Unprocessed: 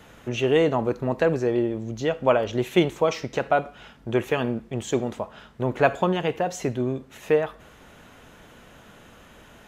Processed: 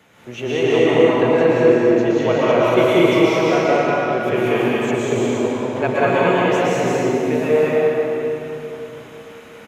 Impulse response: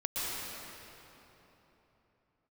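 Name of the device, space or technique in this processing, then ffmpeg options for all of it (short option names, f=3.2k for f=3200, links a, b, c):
stadium PA: -filter_complex "[0:a]highpass=120,equalizer=f=2.2k:t=o:w=0.23:g=6.5,aecho=1:1:189.5|230.3:0.891|0.631[a];[1:a]atrim=start_sample=2205[b];[a][b]afir=irnorm=-1:irlink=0,volume=-2.5dB"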